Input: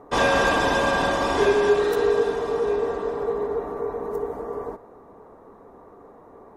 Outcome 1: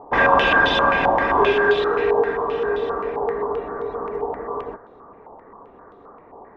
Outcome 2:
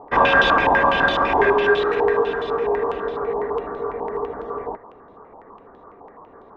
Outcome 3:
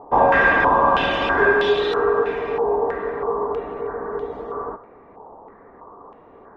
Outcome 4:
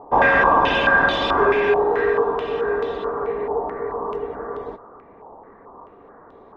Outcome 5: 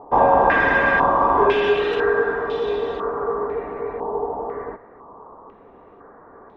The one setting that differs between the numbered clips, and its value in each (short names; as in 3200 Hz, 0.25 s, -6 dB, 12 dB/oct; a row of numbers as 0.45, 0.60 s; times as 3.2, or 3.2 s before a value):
stepped low-pass, rate: 7.6, 12, 3.1, 4.6, 2 Hz